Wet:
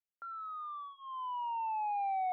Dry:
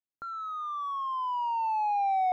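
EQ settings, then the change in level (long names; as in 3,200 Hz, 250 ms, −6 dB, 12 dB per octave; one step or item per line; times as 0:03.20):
high-pass filter 620 Hz
Butterworth low-pass 3,400 Hz 48 dB per octave
notch filter 1,100 Hz, Q 8.6
−5.5 dB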